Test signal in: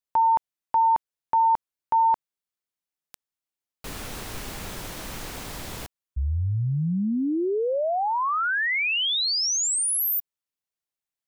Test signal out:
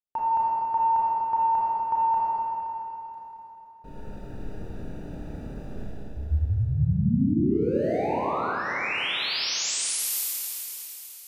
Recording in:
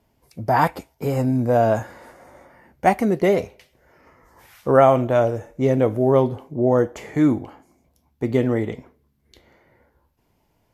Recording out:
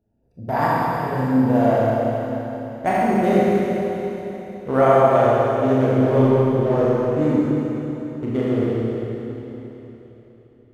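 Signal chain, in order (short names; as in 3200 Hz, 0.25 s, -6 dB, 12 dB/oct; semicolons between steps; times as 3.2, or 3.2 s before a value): Wiener smoothing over 41 samples; Schroeder reverb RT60 3.7 s, combs from 27 ms, DRR -8 dB; gain -6 dB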